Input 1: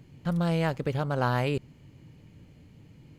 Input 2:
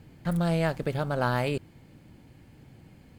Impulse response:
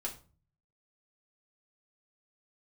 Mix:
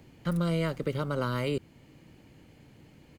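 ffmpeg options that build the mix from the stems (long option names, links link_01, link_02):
-filter_complex "[0:a]highpass=300,volume=1.5dB[link_01];[1:a]volume=-1,adelay=1.1,volume=-4.5dB,asplit=2[link_02][link_03];[link_03]apad=whole_len=140392[link_04];[link_01][link_04]sidechaincompress=threshold=-30dB:ratio=8:attack=16:release=902[link_05];[link_05][link_02]amix=inputs=2:normalize=0,acrossover=split=330|3000[link_06][link_07][link_08];[link_07]acompressor=threshold=-29dB:ratio=6[link_09];[link_06][link_09][link_08]amix=inputs=3:normalize=0"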